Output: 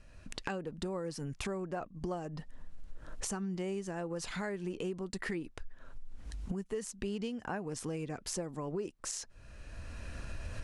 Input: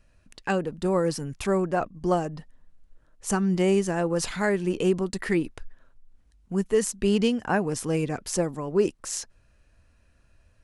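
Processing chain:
camcorder AGC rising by 19 dB per second
low-pass filter 9,700 Hz 12 dB per octave
downward compressor 4 to 1, threshold −42 dBFS, peak gain reduction 20.5 dB
level +3.5 dB

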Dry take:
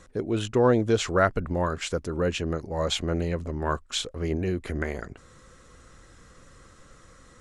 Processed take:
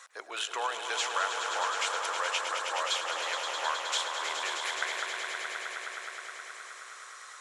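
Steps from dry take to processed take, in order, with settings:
high-pass filter 860 Hz 24 dB per octave
downward compressor 4 to 1, threshold −36 dBFS, peak gain reduction 14.5 dB
echo that builds up and dies away 105 ms, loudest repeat 5, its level −8 dB
level +5.5 dB

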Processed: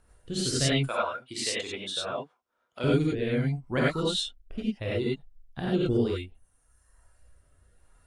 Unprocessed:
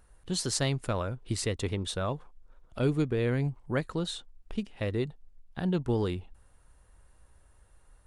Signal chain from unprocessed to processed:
0:00.78–0:02.84: meter weighting curve A
reverb reduction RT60 1.5 s
dynamic equaliser 3,100 Hz, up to +6 dB, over −50 dBFS, Q 1.4
rotating-speaker cabinet horn 0.7 Hz
reverb whose tail is shaped and stops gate 120 ms rising, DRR −6 dB

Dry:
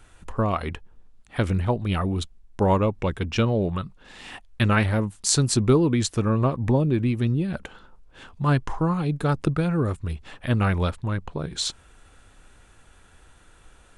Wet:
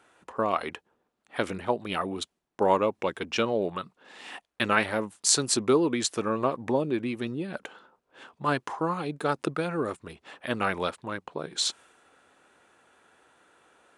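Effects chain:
high-pass filter 340 Hz 12 dB per octave
one half of a high-frequency compander decoder only

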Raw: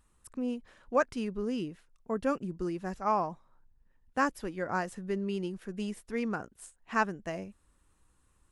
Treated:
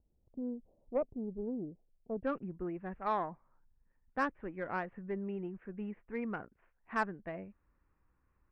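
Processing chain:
Butterworth low-pass 740 Hz 48 dB per octave, from 0:02.23 2,400 Hz
harmonic generator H 6 −26 dB, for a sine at −14.5 dBFS
level −5 dB

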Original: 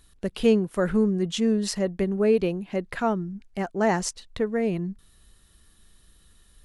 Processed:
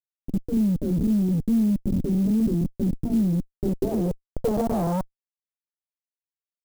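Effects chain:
spectral tilt −1.5 dB per octave
all-pass dispersion lows, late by 115 ms, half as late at 380 Hz
all-pass phaser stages 8, 2.5 Hz, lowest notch 340–4,300 Hz
comparator with hysteresis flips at −27.5 dBFS
low-pass filter sweep 270 Hz → 1,200 Hz, 0:03.33–0:05.44
converter with an unsteady clock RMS 0.029 ms

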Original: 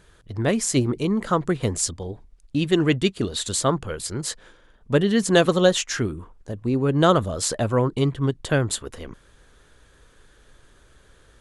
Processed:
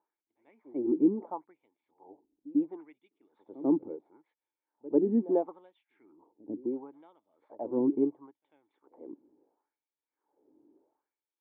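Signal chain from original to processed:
auto-filter high-pass sine 0.73 Hz 280–3,200 Hz
formant resonators in series u
backwards echo 95 ms −19 dB

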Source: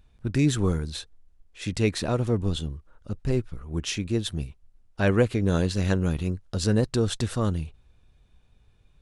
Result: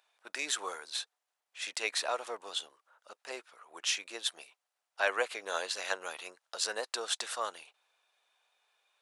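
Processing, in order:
high-pass filter 670 Hz 24 dB per octave

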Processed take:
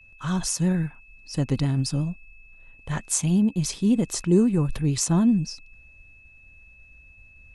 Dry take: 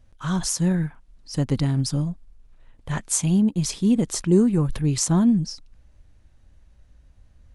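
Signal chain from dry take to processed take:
pitch vibrato 11 Hz 44 cents
downward expander −51 dBFS
steady tone 2,600 Hz −49 dBFS
level −1.5 dB

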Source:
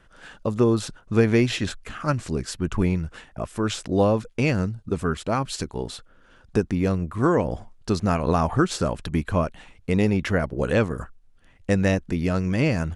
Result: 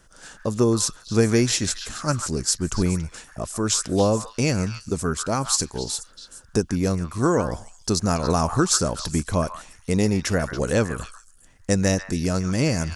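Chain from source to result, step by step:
high shelf with overshoot 4,200 Hz +11.5 dB, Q 1.5
on a send: echo through a band-pass that steps 141 ms, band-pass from 1,400 Hz, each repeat 1.4 octaves, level −5.5 dB

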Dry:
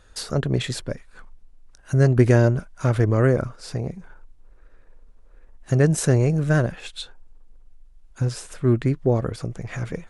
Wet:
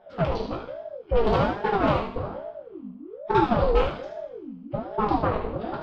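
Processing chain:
adaptive Wiener filter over 41 samples
elliptic low-pass filter 2,600 Hz, stop band 50 dB
in parallel at 0 dB: downward compressor, threshold −32 dBFS, peak gain reduction 19 dB
on the sum: pitch-shifted copies added −5 semitones −8 dB
soft clipping −10.5 dBFS, distortion −15 dB
on a send: feedback echo with a high-pass in the loop 132 ms, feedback 37%, high-pass 450 Hz, level −6.5 dB
on the sum: coupled-rooms reverb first 0.78 s, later 2.7 s, from −20 dB, DRR −5 dB
wrong playback speed 45 rpm record played at 78 rpm
ring modulator whose carrier an LFO sweeps 430 Hz, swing 50%, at 1.2 Hz
level −6.5 dB

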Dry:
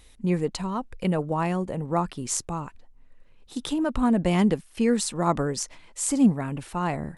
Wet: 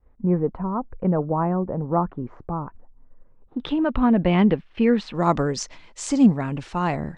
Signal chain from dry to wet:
low-pass filter 1,300 Hz 24 dB per octave, from 0:03.60 3,300 Hz, from 0:05.15 6,300 Hz
downward expander −48 dBFS
level +3.5 dB

